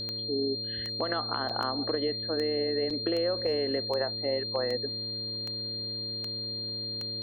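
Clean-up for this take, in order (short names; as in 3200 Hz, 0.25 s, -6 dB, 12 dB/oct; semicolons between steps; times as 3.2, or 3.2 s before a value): de-click; de-hum 112.2 Hz, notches 5; notch 4200 Hz, Q 30; interpolate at 1.49/2.9, 5.7 ms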